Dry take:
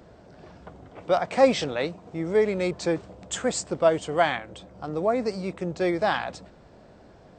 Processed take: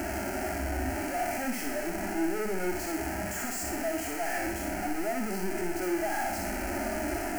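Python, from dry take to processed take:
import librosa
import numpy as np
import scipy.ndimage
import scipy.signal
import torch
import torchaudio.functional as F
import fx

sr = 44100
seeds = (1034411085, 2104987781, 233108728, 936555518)

y = np.sign(x) * np.sqrt(np.mean(np.square(x)))
y = fx.fixed_phaser(y, sr, hz=730.0, stages=8)
y = fx.room_flutter(y, sr, wall_m=10.4, rt60_s=0.55)
y = fx.hpss(y, sr, part='percussive', gain_db=-15)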